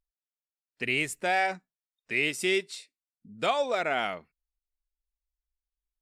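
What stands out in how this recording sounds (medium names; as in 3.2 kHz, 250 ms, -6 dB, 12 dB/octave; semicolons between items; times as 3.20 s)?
noise floor -96 dBFS; spectral tilt -3.0 dB/octave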